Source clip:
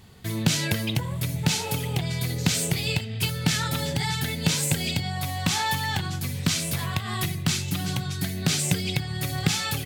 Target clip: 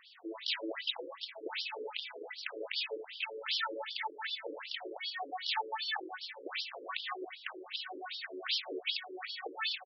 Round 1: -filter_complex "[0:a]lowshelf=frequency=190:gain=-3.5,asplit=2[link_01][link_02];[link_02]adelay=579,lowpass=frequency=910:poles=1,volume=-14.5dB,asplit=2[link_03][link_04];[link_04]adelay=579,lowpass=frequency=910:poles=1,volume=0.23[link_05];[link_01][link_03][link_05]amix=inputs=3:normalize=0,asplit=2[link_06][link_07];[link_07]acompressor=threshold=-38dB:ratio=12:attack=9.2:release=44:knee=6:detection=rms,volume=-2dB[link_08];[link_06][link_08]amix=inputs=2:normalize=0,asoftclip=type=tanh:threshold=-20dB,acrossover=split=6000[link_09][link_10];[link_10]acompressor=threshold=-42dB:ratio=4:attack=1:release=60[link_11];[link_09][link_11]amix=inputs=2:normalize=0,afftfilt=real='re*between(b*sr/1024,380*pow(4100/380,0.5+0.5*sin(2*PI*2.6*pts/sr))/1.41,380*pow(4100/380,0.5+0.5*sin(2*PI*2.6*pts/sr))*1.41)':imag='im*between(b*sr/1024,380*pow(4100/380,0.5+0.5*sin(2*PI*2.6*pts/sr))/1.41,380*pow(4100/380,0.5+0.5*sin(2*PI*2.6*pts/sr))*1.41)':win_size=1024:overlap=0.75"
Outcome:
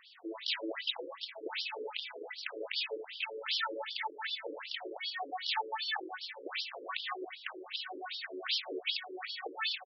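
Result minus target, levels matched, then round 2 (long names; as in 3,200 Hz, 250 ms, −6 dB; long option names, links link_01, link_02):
downward compressor: peak gain reduction −7.5 dB
-filter_complex "[0:a]lowshelf=frequency=190:gain=-3.5,asplit=2[link_01][link_02];[link_02]adelay=579,lowpass=frequency=910:poles=1,volume=-14.5dB,asplit=2[link_03][link_04];[link_04]adelay=579,lowpass=frequency=910:poles=1,volume=0.23[link_05];[link_01][link_03][link_05]amix=inputs=3:normalize=0,asplit=2[link_06][link_07];[link_07]acompressor=threshold=-46dB:ratio=12:attack=9.2:release=44:knee=6:detection=rms,volume=-2dB[link_08];[link_06][link_08]amix=inputs=2:normalize=0,asoftclip=type=tanh:threshold=-20dB,acrossover=split=6000[link_09][link_10];[link_10]acompressor=threshold=-42dB:ratio=4:attack=1:release=60[link_11];[link_09][link_11]amix=inputs=2:normalize=0,afftfilt=real='re*between(b*sr/1024,380*pow(4100/380,0.5+0.5*sin(2*PI*2.6*pts/sr))/1.41,380*pow(4100/380,0.5+0.5*sin(2*PI*2.6*pts/sr))*1.41)':imag='im*between(b*sr/1024,380*pow(4100/380,0.5+0.5*sin(2*PI*2.6*pts/sr))/1.41,380*pow(4100/380,0.5+0.5*sin(2*PI*2.6*pts/sr))*1.41)':win_size=1024:overlap=0.75"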